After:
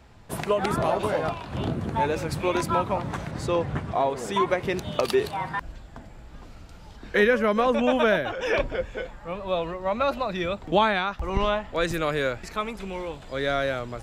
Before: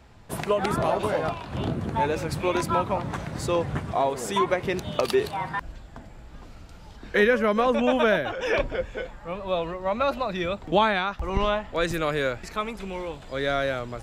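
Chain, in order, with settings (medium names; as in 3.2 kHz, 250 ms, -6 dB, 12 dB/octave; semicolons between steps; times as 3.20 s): 3.31–4.40 s: treble shelf 7.2 kHz -9.5 dB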